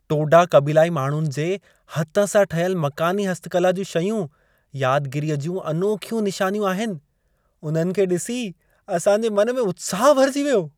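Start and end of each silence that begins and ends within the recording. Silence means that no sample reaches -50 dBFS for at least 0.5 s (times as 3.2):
6.99–7.63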